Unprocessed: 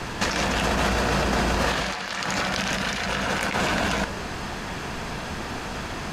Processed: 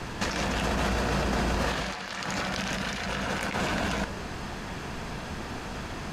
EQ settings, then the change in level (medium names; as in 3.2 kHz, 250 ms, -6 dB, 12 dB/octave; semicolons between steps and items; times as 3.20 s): bass shelf 400 Hz +3.5 dB; -6.0 dB